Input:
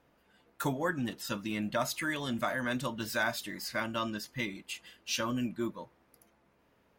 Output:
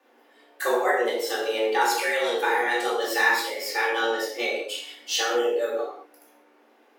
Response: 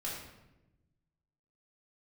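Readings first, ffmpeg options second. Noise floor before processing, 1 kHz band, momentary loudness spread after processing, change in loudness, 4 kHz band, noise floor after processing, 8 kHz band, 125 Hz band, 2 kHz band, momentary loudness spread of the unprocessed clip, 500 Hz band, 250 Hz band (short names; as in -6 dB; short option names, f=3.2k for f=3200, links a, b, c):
-69 dBFS, +12.0 dB, 8 LU, +10.0 dB, +9.5 dB, -59 dBFS, +8.0 dB, under -30 dB, +11.0 dB, 6 LU, +13.5 dB, -1.0 dB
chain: -filter_complex "[0:a]bandreject=f=1k:w=25[a];[1:a]atrim=start_sample=2205,afade=t=out:st=0.27:d=0.01,atrim=end_sample=12348[b];[a][b]afir=irnorm=-1:irlink=0,afreqshift=230,volume=7.5dB"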